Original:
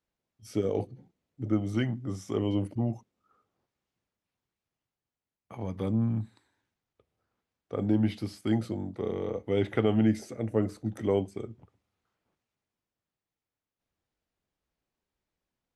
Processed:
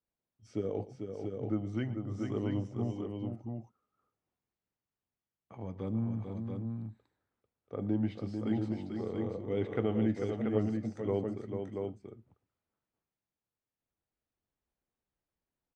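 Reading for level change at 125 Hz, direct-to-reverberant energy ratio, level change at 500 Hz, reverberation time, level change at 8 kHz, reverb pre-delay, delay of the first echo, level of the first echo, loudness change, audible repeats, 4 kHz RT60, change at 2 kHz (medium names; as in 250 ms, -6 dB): -4.0 dB, no reverb, -4.0 dB, no reverb, no reading, no reverb, 117 ms, -18.0 dB, -5.5 dB, 3, no reverb, -6.5 dB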